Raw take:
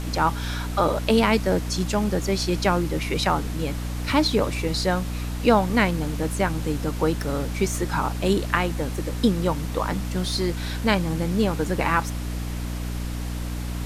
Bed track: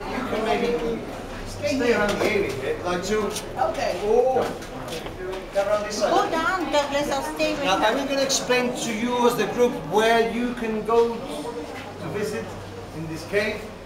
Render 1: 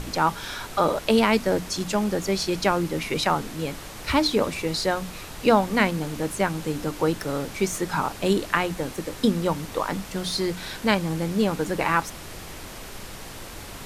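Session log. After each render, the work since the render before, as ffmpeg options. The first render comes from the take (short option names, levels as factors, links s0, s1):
-af "bandreject=f=60:t=h:w=6,bandreject=f=120:t=h:w=6,bandreject=f=180:t=h:w=6,bandreject=f=240:t=h:w=6,bandreject=f=300:t=h:w=6"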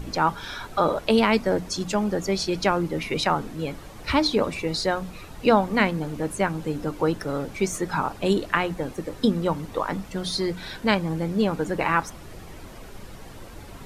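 -af "afftdn=nr=10:nf=-39"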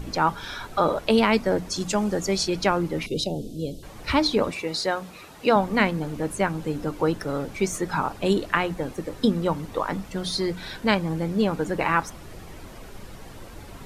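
-filter_complex "[0:a]asettb=1/sr,asplit=3[s0][s1][s2];[s0]atrim=end=1.764[s3];[s1]atrim=start=1.76:end=2.48,asetpts=PTS-STARTPTS,afade=t=in:d=0.004:c=qsin,afade=t=out:st=0.716:d=0.004:c=qsin,equalizer=f=7700:t=o:w=1.2:g=5.5[s4];[s2]atrim=start=2.476[s5];[s3][s4]acrossfade=d=0.004:c1=hsin:c2=qsin[s6];[s6][s5]acrossfade=d=0.004:c1=qsin:c2=hsin,asettb=1/sr,asplit=3[s7][s8][s9];[s7]atrim=end=3.064[s10];[s8]atrim=start=3.06:end=3.83,asetpts=PTS-STARTPTS,afade=t=in:d=0.004:c=qsin,afade=t=out:st=0.766:d=0.004:c=qsin,asuperstop=centerf=1400:order=8:qfactor=0.52[s11];[s9]atrim=start=3.826[s12];[s10][s11]acrossfade=d=0.004:c1=hsin:c2=qsin[s13];[s13][s12]acrossfade=d=0.004:c1=qsin:c2=hsin,asettb=1/sr,asplit=3[s14][s15][s16];[s14]atrim=end=4.514[s17];[s15]atrim=start=4.51:end=5.56,asetpts=PTS-STARTPTS,afade=t=in:d=0.004:c=qsin,afade=t=out:st=1.046:d=0.004:c=qsin,highpass=f=300:p=1[s18];[s16]atrim=start=5.556[s19];[s17][s18]acrossfade=d=0.004:c1=hsin:c2=qsin[s20];[s20][s19]acrossfade=d=0.004:c1=qsin:c2=hsin"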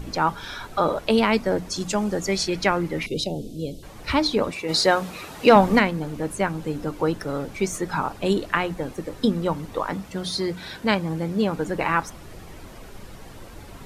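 -filter_complex "[0:a]asettb=1/sr,asplit=3[s0][s1][s2];[s0]atrim=end=2.264[s3];[s1]atrim=start=2.26:end=3.83,asetpts=PTS-STARTPTS,afade=t=in:d=0.004:c=qsin,afade=t=out:st=1.566:d=0.004:c=qsin,equalizer=f=2000:w=2.7:g=6.5[s4];[s2]atrim=start=3.826[s5];[s3][s4]acrossfade=d=0.004:c1=hsin:c2=qsin[s6];[s6][s5]acrossfade=d=0.004:c1=qsin:c2=hsin,asplit=3[s7][s8][s9];[s7]afade=t=out:st=4.68:d=0.02[s10];[s8]acontrast=87,afade=t=in:st=4.68:d=0.02,afade=t=out:st=5.78:d=0.02[s11];[s9]afade=t=in:st=5.78:d=0.02[s12];[s10][s11][s12]amix=inputs=3:normalize=0,asettb=1/sr,asplit=3[s13][s14][s15];[s13]atrim=end=9.924[s16];[s14]atrim=start=9.92:end=11.57,asetpts=PTS-STARTPTS,afade=t=in:d=0.004:c=qsin,afade=t=out:st=1.646:d=0.004:c=qsin,highpass=55[s17];[s15]atrim=start=11.566[s18];[s16][s17]acrossfade=d=0.004:c1=hsin:c2=qsin[s19];[s19][s18]acrossfade=d=0.004:c1=qsin:c2=hsin"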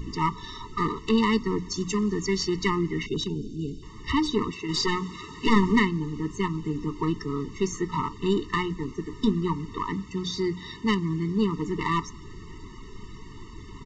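-af "aresample=16000,aeval=exprs='clip(val(0),-1,0.0891)':c=same,aresample=44100,afftfilt=real='re*eq(mod(floor(b*sr/1024/440),2),0)':imag='im*eq(mod(floor(b*sr/1024/440),2),0)':win_size=1024:overlap=0.75"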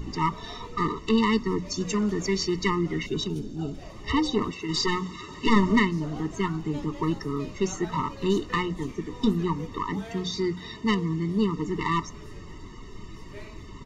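-filter_complex "[1:a]volume=0.0668[s0];[0:a][s0]amix=inputs=2:normalize=0"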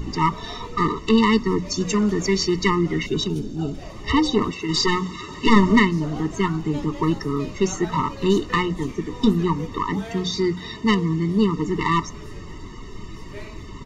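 -af "volume=1.88"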